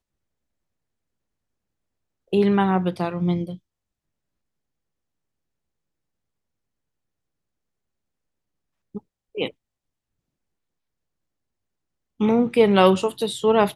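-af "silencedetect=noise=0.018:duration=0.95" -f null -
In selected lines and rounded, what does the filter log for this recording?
silence_start: 0.00
silence_end: 2.33 | silence_duration: 2.33
silence_start: 3.56
silence_end: 8.95 | silence_duration: 5.39
silence_start: 9.50
silence_end: 12.20 | silence_duration: 2.70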